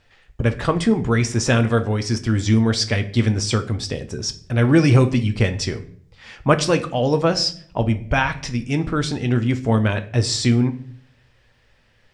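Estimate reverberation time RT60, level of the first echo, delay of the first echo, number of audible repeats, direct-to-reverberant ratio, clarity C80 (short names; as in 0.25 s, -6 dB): 0.55 s, none, none, none, 8.0 dB, 19.5 dB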